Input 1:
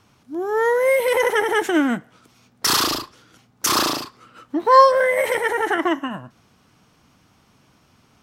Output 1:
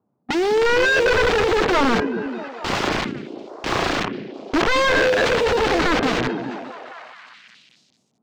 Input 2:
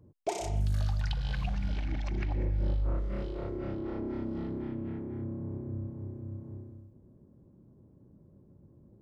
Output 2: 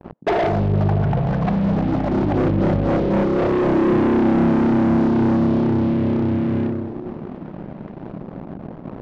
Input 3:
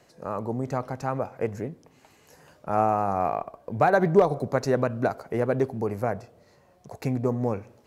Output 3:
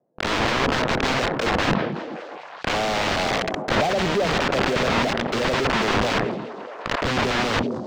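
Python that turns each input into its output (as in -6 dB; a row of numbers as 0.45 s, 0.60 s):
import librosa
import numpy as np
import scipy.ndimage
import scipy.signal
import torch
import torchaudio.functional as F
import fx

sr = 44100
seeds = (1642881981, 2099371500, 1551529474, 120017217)

p1 = scipy.signal.sosfilt(scipy.signal.cheby1(2, 1.0, [170.0, 690.0], 'bandpass', fs=sr, output='sos'), x)
p2 = fx.leveller(p1, sr, passes=1)
p3 = fx.level_steps(p2, sr, step_db=12)
p4 = p2 + (p3 * librosa.db_to_amplitude(-1.0))
p5 = fx.leveller(p4, sr, passes=5)
p6 = (np.mod(10.0 ** (12.0 / 20.0) * p5 + 1.0, 2.0) - 1.0) / 10.0 ** (12.0 / 20.0)
p7 = fx.air_absorb(p6, sr, metres=170.0)
p8 = fx.echo_stepped(p7, sr, ms=212, hz=190.0, octaves=0.7, feedback_pct=70, wet_db=-5.0)
p9 = fx.sustainer(p8, sr, db_per_s=44.0)
y = p9 * 10.0 ** (-9 / 20.0) / np.max(np.abs(p9))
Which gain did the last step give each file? 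-1.5 dB, +3.5 dB, -1.0 dB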